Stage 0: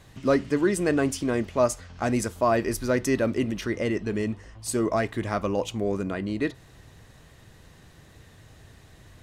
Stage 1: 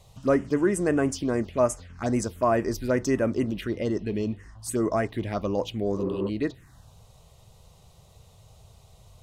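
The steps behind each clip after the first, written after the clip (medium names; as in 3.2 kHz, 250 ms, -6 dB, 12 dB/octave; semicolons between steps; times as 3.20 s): touch-sensitive phaser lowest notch 260 Hz, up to 4.2 kHz, full sweep at -20 dBFS; spectral replace 6.00–6.26 s, 280–2500 Hz before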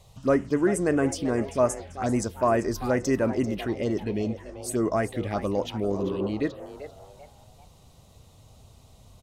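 frequency-shifting echo 391 ms, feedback 36%, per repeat +140 Hz, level -13.5 dB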